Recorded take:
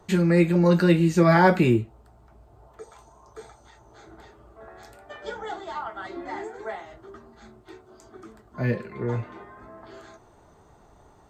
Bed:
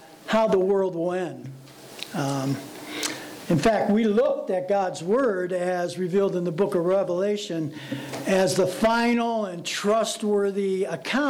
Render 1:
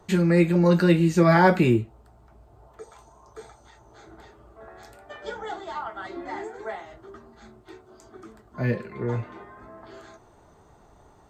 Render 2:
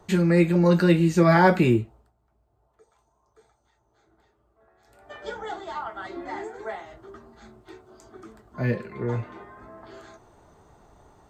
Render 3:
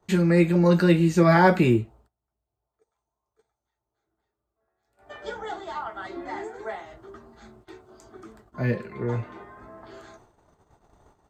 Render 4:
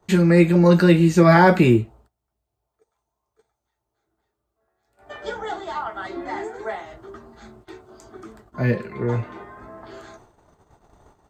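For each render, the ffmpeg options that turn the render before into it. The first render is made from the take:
-af anull
-filter_complex "[0:a]asplit=3[a][b][c];[a]atrim=end=2.13,asetpts=PTS-STARTPTS,afade=t=out:st=1.81:d=0.32:silence=0.158489[d];[b]atrim=start=2.13:end=4.84,asetpts=PTS-STARTPTS,volume=-16dB[e];[c]atrim=start=4.84,asetpts=PTS-STARTPTS,afade=t=in:d=0.32:silence=0.158489[f];[d][e][f]concat=n=3:v=0:a=1"
-af "agate=range=-16dB:threshold=-53dB:ratio=16:detection=peak"
-af "volume=4.5dB,alimiter=limit=-3dB:level=0:latency=1"

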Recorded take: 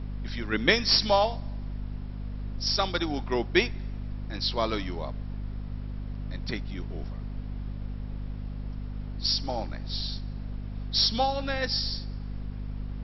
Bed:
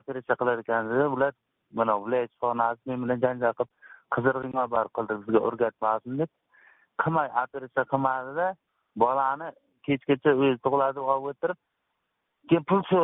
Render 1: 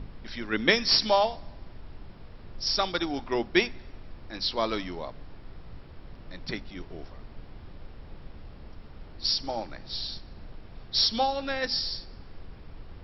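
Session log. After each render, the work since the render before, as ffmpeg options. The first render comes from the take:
-af "bandreject=f=50:t=h:w=6,bandreject=f=100:t=h:w=6,bandreject=f=150:t=h:w=6,bandreject=f=200:t=h:w=6,bandreject=f=250:t=h:w=6"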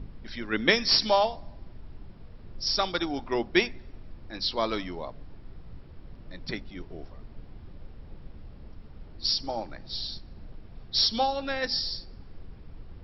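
-af "afftdn=nr=6:nf=-47"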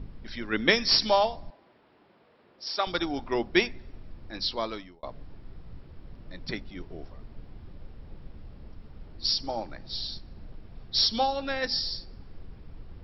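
-filter_complex "[0:a]asettb=1/sr,asplit=3[a][b][c];[a]atrim=end=1.504[d];[b]atrim=start=1.5:end=2.87,asetpts=PTS-STARTPTS,afade=t=in:d=0.004:c=qsin,afade=t=out:st=1.366:d=0.004:c=qsin,highpass=420,lowpass=3.6k[e];[c]atrim=start=2.866[f];[d][e]acrossfade=d=0.004:c1=hsin:c2=qsin[g];[g][f]acrossfade=d=0.004:c1=qsin:c2=hsin,asplit=2[h][i];[h]atrim=end=5.03,asetpts=PTS-STARTPTS,afade=t=out:st=4.42:d=0.61[j];[i]atrim=start=5.03,asetpts=PTS-STARTPTS,afade=t=in:d=0.004:c=hsin[k];[j][k]concat=n=2:v=0:a=1"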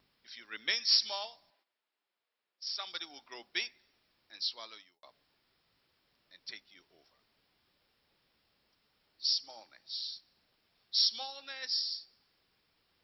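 -af "agate=range=-11dB:threshold=-52dB:ratio=16:detection=peak,aderivative"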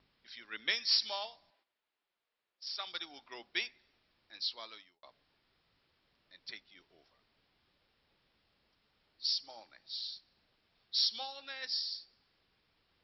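-af "lowpass=f=4.9k:w=0.5412,lowpass=f=4.9k:w=1.3066,lowshelf=f=85:g=5.5"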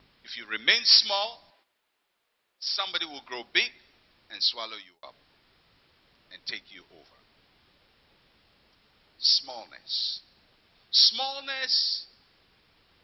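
-af "volume=11.5dB"

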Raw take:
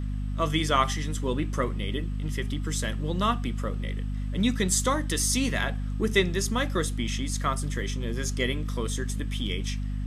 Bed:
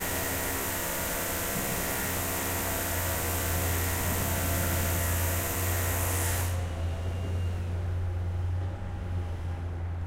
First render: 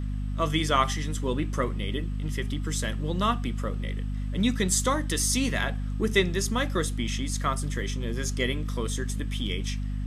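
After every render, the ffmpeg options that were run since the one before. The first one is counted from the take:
-af anull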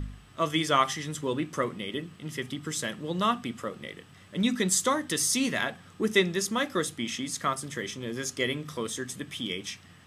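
-af "bandreject=f=50:t=h:w=4,bandreject=f=100:t=h:w=4,bandreject=f=150:t=h:w=4,bandreject=f=200:t=h:w=4,bandreject=f=250:t=h:w=4"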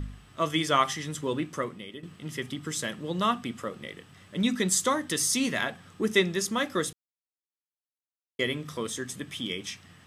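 -filter_complex "[0:a]asplit=4[a][b][c][d];[a]atrim=end=2.03,asetpts=PTS-STARTPTS,afade=t=out:st=1.39:d=0.64:silence=0.266073[e];[b]atrim=start=2.03:end=6.93,asetpts=PTS-STARTPTS,afade=t=in:d=0.004:c=hsin:silence=0.266073,afade=t=out:st=4.896:d=0.004:c=hsin[f];[c]atrim=start=6.93:end=8.39,asetpts=PTS-STARTPTS,volume=0[g];[d]atrim=start=8.39,asetpts=PTS-STARTPTS,afade=t=in:d=0.004:c=hsin[h];[e][f][g][h]concat=n=4:v=0:a=1"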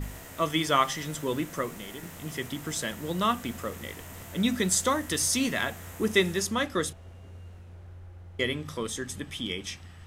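-filter_complex "[1:a]volume=-15dB[a];[0:a][a]amix=inputs=2:normalize=0"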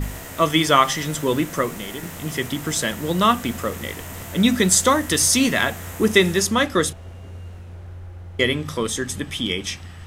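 -af "volume=9dB,alimiter=limit=-2dB:level=0:latency=1"

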